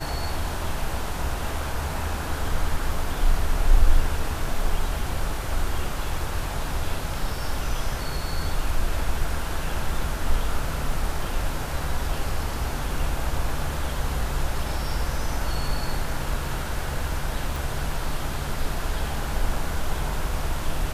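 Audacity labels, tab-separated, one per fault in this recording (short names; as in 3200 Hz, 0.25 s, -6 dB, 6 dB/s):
17.560000	17.560000	pop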